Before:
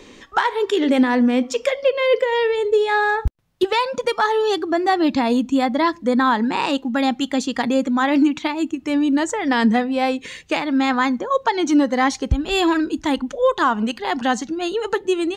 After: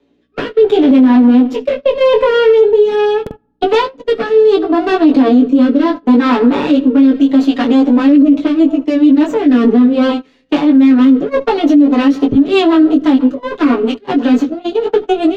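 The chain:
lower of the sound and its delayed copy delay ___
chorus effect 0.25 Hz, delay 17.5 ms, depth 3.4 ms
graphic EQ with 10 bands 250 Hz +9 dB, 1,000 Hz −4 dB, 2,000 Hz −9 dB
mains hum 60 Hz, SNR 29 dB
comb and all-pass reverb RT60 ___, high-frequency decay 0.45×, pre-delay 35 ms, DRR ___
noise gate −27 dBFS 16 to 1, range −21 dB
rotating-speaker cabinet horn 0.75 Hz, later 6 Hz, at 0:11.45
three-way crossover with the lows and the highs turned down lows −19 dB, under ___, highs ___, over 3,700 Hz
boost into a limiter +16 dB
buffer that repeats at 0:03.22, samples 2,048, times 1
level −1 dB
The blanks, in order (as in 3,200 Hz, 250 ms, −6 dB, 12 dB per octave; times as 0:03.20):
7 ms, 0.84 s, 17 dB, 210 Hz, −23 dB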